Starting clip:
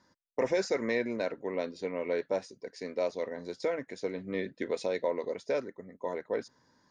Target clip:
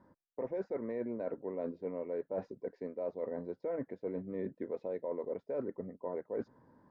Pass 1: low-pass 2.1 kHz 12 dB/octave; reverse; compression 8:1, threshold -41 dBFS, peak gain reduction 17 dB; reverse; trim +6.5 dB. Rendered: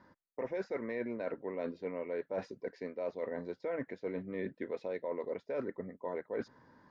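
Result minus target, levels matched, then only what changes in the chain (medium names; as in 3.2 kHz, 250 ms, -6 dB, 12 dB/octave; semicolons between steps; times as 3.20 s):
2 kHz band +10.5 dB
change: low-pass 870 Hz 12 dB/octave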